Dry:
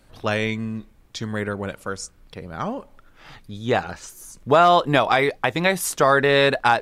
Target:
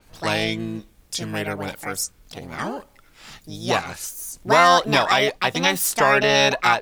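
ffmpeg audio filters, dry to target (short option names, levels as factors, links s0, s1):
-filter_complex "[0:a]highshelf=f=3000:g=8.5,acrossover=split=3600[s0][s1];[s1]dynaudnorm=f=220:g=7:m=1.41[s2];[s0][s2]amix=inputs=2:normalize=0,asplit=2[s3][s4];[s4]asetrate=66075,aresample=44100,atempo=0.66742,volume=0.794[s5];[s3][s5]amix=inputs=2:normalize=0,adynamicequalizer=threshold=0.0251:dfrequency=5300:dqfactor=0.7:tfrequency=5300:tqfactor=0.7:attack=5:release=100:ratio=0.375:range=3:mode=cutabove:tftype=highshelf,volume=0.708"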